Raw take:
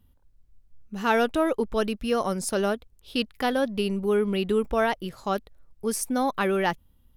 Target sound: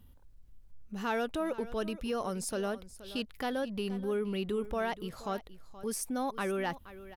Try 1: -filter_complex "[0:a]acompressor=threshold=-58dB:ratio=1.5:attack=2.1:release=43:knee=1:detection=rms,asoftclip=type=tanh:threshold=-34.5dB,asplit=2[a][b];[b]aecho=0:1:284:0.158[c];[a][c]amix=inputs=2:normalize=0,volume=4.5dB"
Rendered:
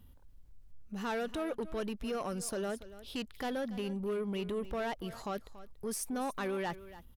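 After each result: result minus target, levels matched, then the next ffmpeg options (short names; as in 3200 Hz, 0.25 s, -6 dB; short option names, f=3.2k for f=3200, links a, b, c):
soft clip: distortion +16 dB; echo 0.191 s early
-filter_complex "[0:a]acompressor=threshold=-58dB:ratio=1.5:attack=2.1:release=43:knee=1:detection=rms,asoftclip=type=tanh:threshold=-24dB,asplit=2[a][b];[b]aecho=0:1:284:0.158[c];[a][c]amix=inputs=2:normalize=0,volume=4.5dB"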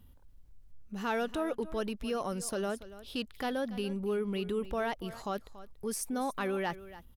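echo 0.191 s early
-filter_complex "[0:a]acompressor=threshold=-58dB:ratio=1.5:attack=2.1:release=43:knee=1:detection=rms,asoftclip=type=tanh:threshold=-24dB,asplit=2[a][b];[b]aecho=0:1:475:0.158[c];[a][c]amix=inputs=2:normalize=0,volume=4.5dB"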